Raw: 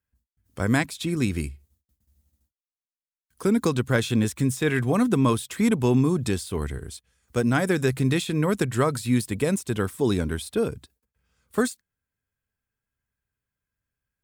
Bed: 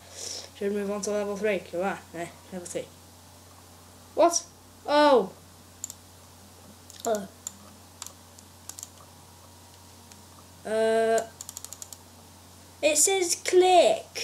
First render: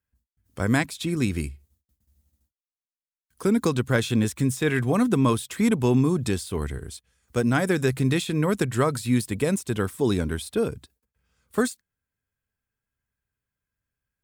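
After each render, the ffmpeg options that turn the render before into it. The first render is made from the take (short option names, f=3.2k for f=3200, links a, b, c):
-af anull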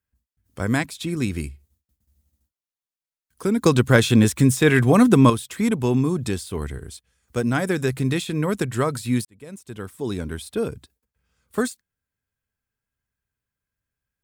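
-filter_complex "[0:a]asplit=4[a][b][c][d];[a]atrim=end=3.662[e];[b]atrim=start=3.658:end=5.302,asetpts=PTS-STARTPTS,volume=7dB[f];[c]atrim=start=5.298:end=9.25,asetpts=PTS-STARTPTS,afade=t=out:st=3.948:d=0.004:c=hsin[g];[d]atrim=start=9.25,asetpts=PTS-STARTPTS,afade=t=in:d=1.43[h];[e][f]acrossfade=d=0.004:c1=hsin:c2=hsin[i];[g][h]concat=n=2:v=0:a=1[j];[i][j]acrossfade=d=0.004:c1=hsin:c2=hsin"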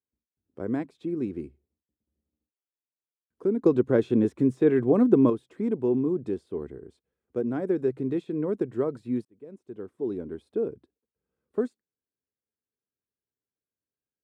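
-af "bandpass=f=370:t=q:w=2:csg=0"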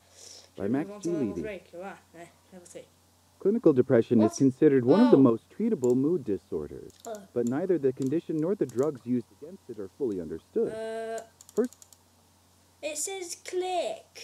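-filter_complex "[1:a]volume=-11.5dB[a];[0:a][a]amix=inputs=2:normalize=0"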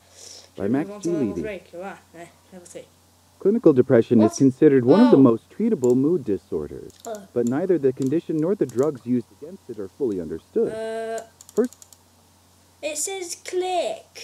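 -af "volume=6dB,alimiter=limit=-3dB:level=0:latency=1"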